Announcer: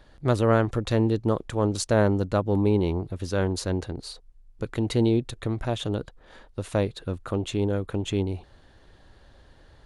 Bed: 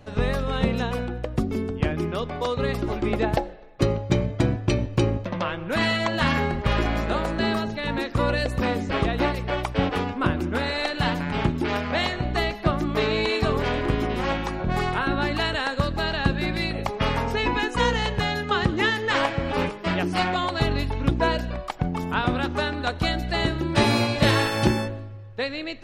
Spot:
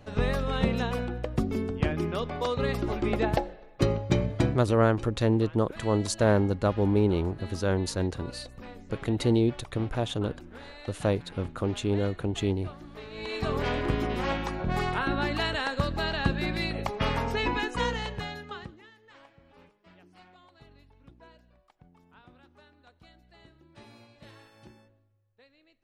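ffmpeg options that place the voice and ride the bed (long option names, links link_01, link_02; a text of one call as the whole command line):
ffmpeg -i stem1.wav -i stem2.wav -filter_complex "[0:a]adelay=4300,volume=-1.5dB[link_01];[1:a]volume=13.5dB,afade=type=out:start_time=4.44:duration=0.23:silence=0.133352,afade=type=in:start_time=13.11:duration=0.53:silence=0.149624,afade=type=out:start_time=17.44:duration=1.37:silence=0.0398107[link_02];[link_01][link_02]amix=inputs=2:normalize=0" out.wav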